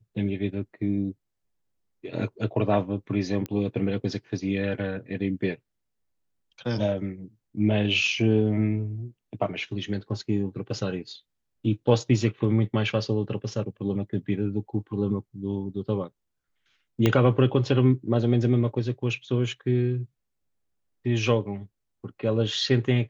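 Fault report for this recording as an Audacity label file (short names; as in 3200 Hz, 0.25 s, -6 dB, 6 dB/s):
3.460000	3.460000	pop -18 dBFS
17.060000	17.060000	pop -8 dBFS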